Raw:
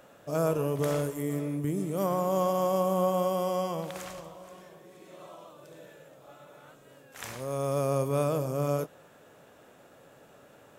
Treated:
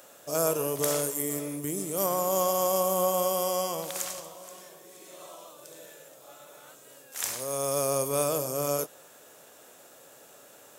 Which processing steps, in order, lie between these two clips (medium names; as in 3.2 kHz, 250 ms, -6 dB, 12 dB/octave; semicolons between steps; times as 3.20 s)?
tone controls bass -10 dB, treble +14 dB; trim +1 dB